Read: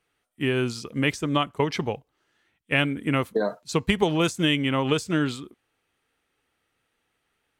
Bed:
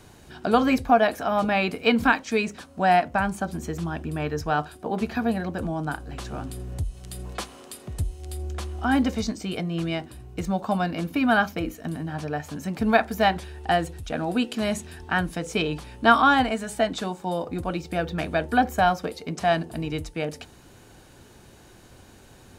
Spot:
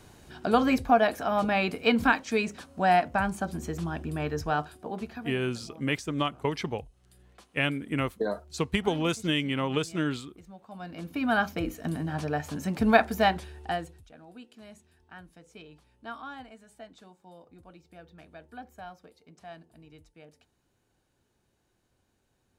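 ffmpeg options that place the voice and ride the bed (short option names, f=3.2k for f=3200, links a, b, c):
-filter_complex "[0:a]adelay=4850,volume=-5dB[a];[1:a]volume=19dB,afade=t=out:st=4.47:d=0.93:silence=0.105925,afade=t=in:st=10.7:d=1.16:silence=0.0794328,afade=t=out:st=13:d=1.11:silence=0.0707946[b];[a][b]amix=inputs=2:normalize=0"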